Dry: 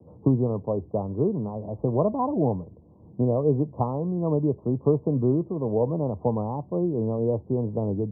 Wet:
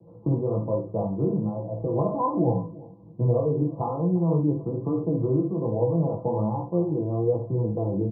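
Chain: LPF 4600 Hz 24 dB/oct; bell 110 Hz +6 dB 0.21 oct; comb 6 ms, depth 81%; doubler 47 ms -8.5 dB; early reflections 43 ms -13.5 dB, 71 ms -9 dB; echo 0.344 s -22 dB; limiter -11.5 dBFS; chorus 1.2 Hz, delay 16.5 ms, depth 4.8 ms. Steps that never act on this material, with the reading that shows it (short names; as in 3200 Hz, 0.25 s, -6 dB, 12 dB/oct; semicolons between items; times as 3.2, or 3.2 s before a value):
LPF 4600 Hz: input band ends at 1100 Hz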